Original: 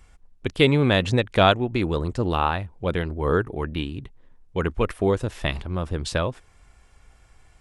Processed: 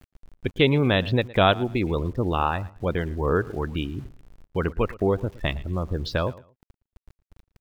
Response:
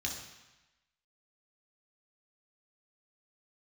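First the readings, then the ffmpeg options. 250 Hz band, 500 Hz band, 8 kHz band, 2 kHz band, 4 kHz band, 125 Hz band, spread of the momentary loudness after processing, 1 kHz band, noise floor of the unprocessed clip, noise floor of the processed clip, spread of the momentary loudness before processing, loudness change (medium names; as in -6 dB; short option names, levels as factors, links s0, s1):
-1.0 dB, -1.0 dB, under -10 dB, -1.5 dB, -2.0 dB, -1.0 dB, 11 LU, -1.5 dB, -56 dBFS, under -85 dBFS, 12 LU, -1.0 dB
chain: -filter_complex "[0:a]lowpass=f=6100:w=0.5412,lowpass=f=6100:w=1.3066,afftdn=nr=23:nf=-35,asplit=2[s0][s1];[s1]acompressor=threshold=0.0178:ratio=8,volume=1.19[s2];[s0][s2]amix=inputs=2:normalize=0,aeval=exprs='val(0)*gte(abs(val(0)),0.0075)':c=same,asplit=2[s3][s4];[s4]adelay=114,lowpass=f=4800:p=1,volume=0.1,asplit=2[s5][s6];[s6]adelay=114,lowpass=f=4800:p=1,volume=0.25[s7];[s3][s5][s7]amix=inputs=3:normalize=0,volume=0.75"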